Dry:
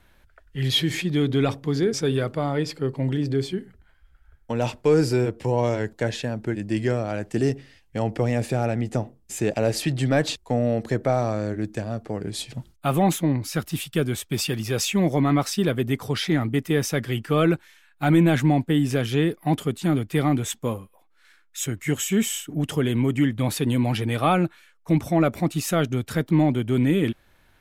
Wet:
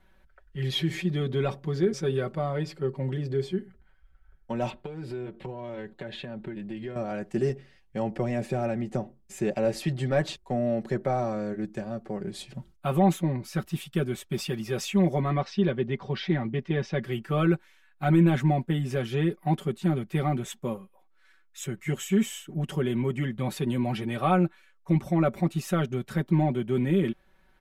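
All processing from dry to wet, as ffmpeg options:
-filter_complex "[0:a]asettb=1/sr,asplit=3[a][b][c];[a]atrim=end=4.704[d];[b]atrim=start=4.7:end=6.96,asetpts=PTS-STARTPTS,afade=t=in:d=0.004:c=qsin,afade=t=out:st=2.256:d=0.004:c=qsin,highshelf=f=4.6k:t=q:w=3:g=-6.5,acompressor=threshold=-27dB:ratio=16:attack=3.2:release=140:knee=1:detection=peak[e];[c]atrim=start=6.956[f];[d][e]acrossfade=d=0.004:c1=hsin:c2=qsin[g];[g][f]acrossfade=d=0.004:c1=qsin:c2=hsin,asettb=1/sr,asplit=3[h][i][j];[h]atrim=end=15.304[k];[i]atrim=start=15.3:end=17.04,asetpts=PTS-STARTPTS,afade=t=in:d=0.004:c=qsin,afade=t=out:st=1.736:d=0.004:c=qsin,lowpass=f=4.9k:w=0.5412,lowpass=f=4.9k:w=1.3066,bandreject=f=1.3k:w=11[l];[j]atrim=start=17.036[m];[k][l]acrossfade=d=0.004:c1=hsin:c2=qsin[n];[n][m]acrossfade=d=0.004:c1=qsin:c2=hsin,highshelf=f=3.1k:g=-8.5,aecho=1:1:5.3:0.76,volume=-5.5dB"

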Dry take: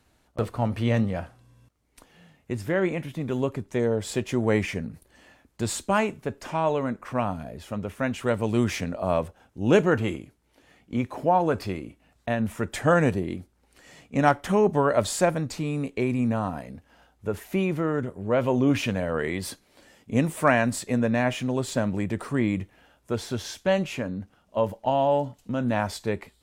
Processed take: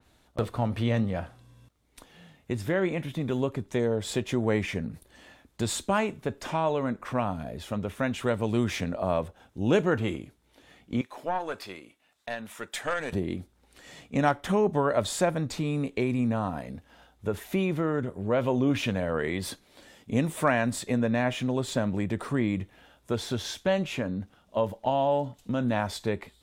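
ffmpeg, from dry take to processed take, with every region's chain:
-filter_complex "[0:a]asettb=1/sr,asplit=3[a][b][c];[a]atrim=end=11.014[d];[b]atrim=start=11.01:end=13.13,asetpts=PTS-STARTPTS,afade=t=in:d=0.004:c=qsin,afade=t=out:st=2.116:d=0.004:c=qsin,highpass=f=1.1k:p=1,aeval=exprs='(tanh(7.08*val(0)+0.55)-tanh(0.55))/7.08':c=same[e];[c]atrim=start=13.126[f];[d][e]acrossfade=d=0.004:c1=hsin:c2=qsin[g];[g][f]acrossfade=d=0.004:c1=qsin:c2=hsin,equalizer=f=3.6k:t=o:w=0.25:g=6.5,acompressor=threshold=-30dB:ratio=1.5,adynamicequalizer=threshold=0.00562:dfrequency=2800:dqfactor=0.7:tfrequency=2800:tqfactor=0.7:attack=5:release=100:ratio=0.375:range=1.5:mode=cutabove:tftype=highshelf,volume=1.5dB"

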